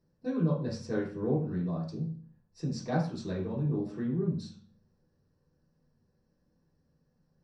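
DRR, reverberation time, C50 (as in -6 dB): -7.0 dB, 0.45 s, 5.5 dB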